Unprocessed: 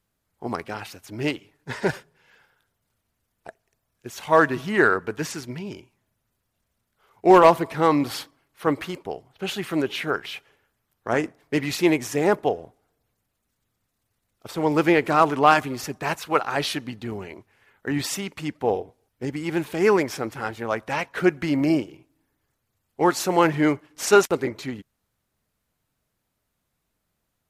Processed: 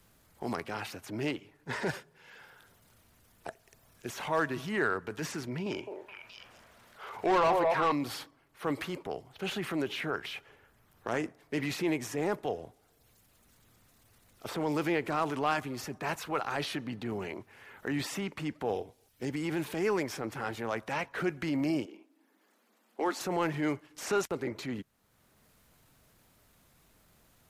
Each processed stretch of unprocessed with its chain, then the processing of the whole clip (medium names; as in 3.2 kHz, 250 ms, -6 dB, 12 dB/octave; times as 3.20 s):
5.66–7.92 s: repeats whose band climbs or falls 211 ms, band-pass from 620 Hz, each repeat 1.4 oct, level -3.5 dB + overdrive pedal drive 17 dB, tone 2.6 kHz, clips at -2 dBFS
21.85–23.21 s: Chebyshev high-pass 200 Hz, order 6 + treble shelf 4.3 kHz -9 dB
whole clip: transient shaper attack -6 dB, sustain +3 dB; three bands compressed up and down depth 70%; trim -8.5 dB